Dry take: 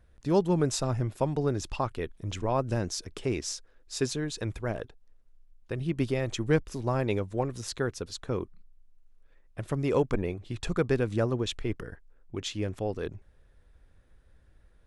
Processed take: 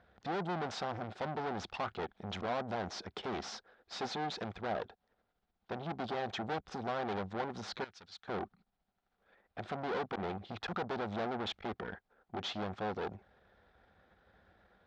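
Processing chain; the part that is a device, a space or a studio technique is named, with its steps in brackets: guitar amplifier (tube stage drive 40 dB, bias 0.6; tone controls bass -3 dB, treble +11 dB; speaker cabinet 110–3500 Hz, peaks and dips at 130 Hz -9 dB, 200 Hz +5 dB, 290 Hz -5 dB, 760 Hz +10 dB, 1400 Hz +5 dB, 2700 Hz -5 dB); 7.84–8.28 passive tone stack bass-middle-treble 5-5-5; gain +5.5 dB

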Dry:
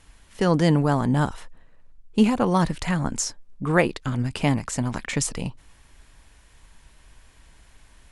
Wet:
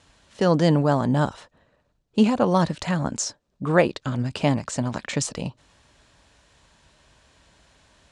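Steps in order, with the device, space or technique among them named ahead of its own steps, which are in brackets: car door speaker (speaker cabinet 84–8100 Hz, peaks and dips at 590 Hz +6 dB, 2100 Hz -4 dB, 4000 Hz +3 dB)

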